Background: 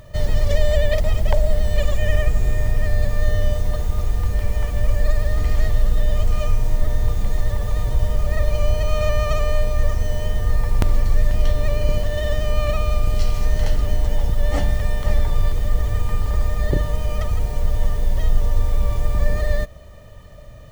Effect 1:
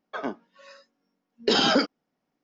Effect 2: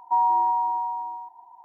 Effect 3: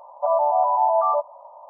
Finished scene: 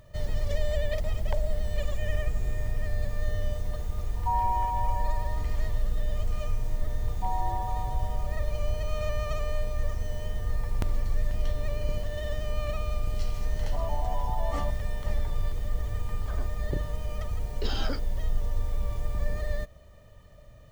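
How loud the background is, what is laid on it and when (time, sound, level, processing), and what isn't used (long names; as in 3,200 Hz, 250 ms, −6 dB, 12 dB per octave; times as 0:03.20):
background −10.5 dB
0:04.15: mix in 2 −7 dB
0:07.11: mix in 2 −1 dB + Butterworth low-pass 730 Hz
0:13.50: mix in 3 −17 dB
0:16.14: mix in 1 −14.5 dB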